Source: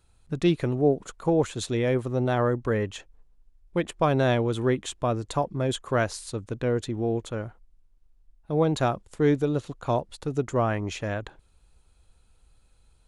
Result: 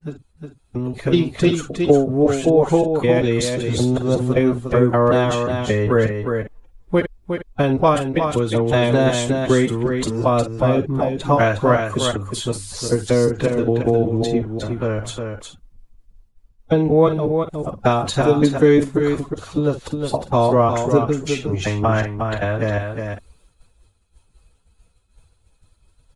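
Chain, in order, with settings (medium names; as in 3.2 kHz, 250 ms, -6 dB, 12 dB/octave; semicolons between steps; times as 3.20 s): slices played last to first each 95 ms, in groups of 4; on a send: delay 180 ms -6 dB; on the sum: expander -51 dBFS; level rider gain up to 10.5 dB; plain phase-vocoder stretch 2×; trim +2 dB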